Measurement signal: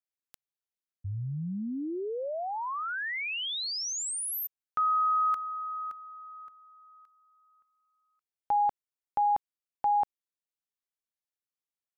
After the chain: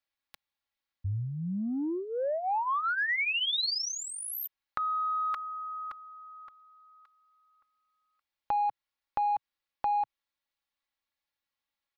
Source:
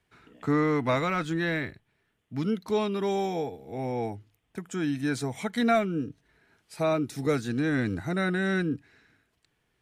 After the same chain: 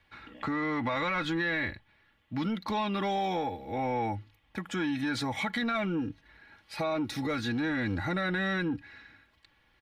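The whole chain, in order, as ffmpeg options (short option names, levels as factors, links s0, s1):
-filter_complex "[0:a]aecho=1:1:3.6:0.67,asplit=2[s0][s1];[s1]asoftclip=type=tanh:threshold=0.0501,volume=0.447[s2];[s0][s2]amix=inputs=2:normalize=0,alimiter=limit=0.106:level=0:latency=1:release=75,acrossover=split=950[s3][s4];[s3]acontrast=88[s5];[s5][s4]amix=inputs=2:normalize=0,equalizer=f=125:t=o:w=1:g=4,equalizer=f=250:t=o:w=1:g=-6,equalizer=f=500:t=o:w=1:g=-3,equalizer=f=1000:t=o:w=1:g=5,equalizer=f=2000:t=o:w=1:g=8,equalizer=f=4000:t=o:w=1:g=9,equalizer=f=8000:t=o:w=1:g=-7,acompressor=threshold=0.0794:ratio=6:attack=4.5:release=68:knee=6:detection=peak,volume=0.562"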